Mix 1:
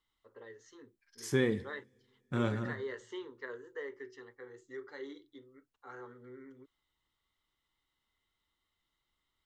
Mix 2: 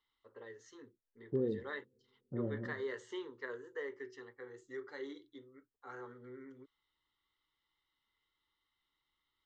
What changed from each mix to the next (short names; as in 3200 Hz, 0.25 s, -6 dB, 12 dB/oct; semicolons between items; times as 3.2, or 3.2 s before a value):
second voice: add ladder low-pass 610 Hz, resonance 35%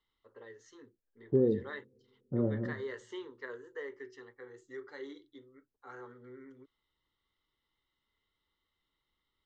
second voice +7.5 dB